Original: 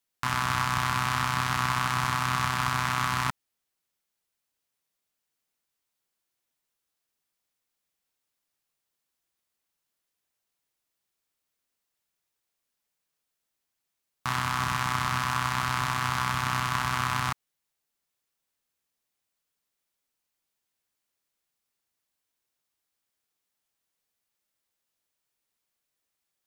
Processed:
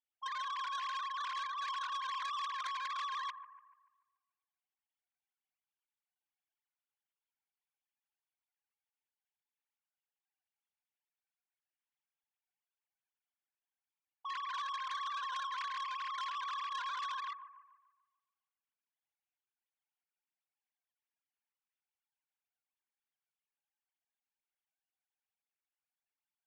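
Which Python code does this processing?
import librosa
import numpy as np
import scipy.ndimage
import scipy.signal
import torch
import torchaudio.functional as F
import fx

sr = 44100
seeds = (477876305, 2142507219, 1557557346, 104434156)

p1 = fx.sine_speech(x, sr)
p2 = fx.low_shelf(p1, sr, hz=470.0, db=-11.5)
p3 = p2 + fx.echo_wet_lowpass(p2, sr, ms=145, feedback_pct=44, hz=800.0, wet_db=-6.5, dry=0)
p4 = fx.transformer_sat(p3, sr, knee_hz=3100.0)
y = p4 * 10.0 ** (-8.0 / 20.0)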